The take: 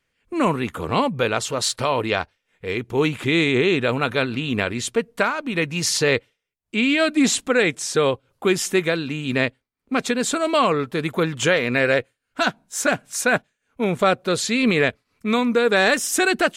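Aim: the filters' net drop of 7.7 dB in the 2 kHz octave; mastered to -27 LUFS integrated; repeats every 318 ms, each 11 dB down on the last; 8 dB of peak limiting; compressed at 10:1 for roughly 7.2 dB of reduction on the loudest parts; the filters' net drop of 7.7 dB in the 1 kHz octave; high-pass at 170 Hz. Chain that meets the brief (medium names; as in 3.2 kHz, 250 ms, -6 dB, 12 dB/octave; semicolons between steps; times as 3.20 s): high-pass 170 Hz; peaking EQ 1 kHz -8.5 dB; peaking EQ 2 kHz -7.5 dB; compression 10:1, threshold -23 dBFS; peak limiter -20.5 dBFS; feedback delay 318 ms, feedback 28%, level -11 dB; trim +3.5 dB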